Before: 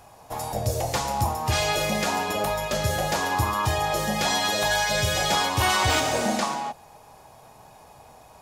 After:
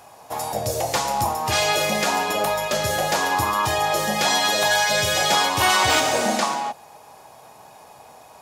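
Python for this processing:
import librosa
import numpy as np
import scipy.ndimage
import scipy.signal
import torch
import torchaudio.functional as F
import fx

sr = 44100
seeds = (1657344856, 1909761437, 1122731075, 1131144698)

y = fx.highpass(x, sr, hz=280.0, slope=6)
y = y * 10.0 ** (4.5 / 20.0)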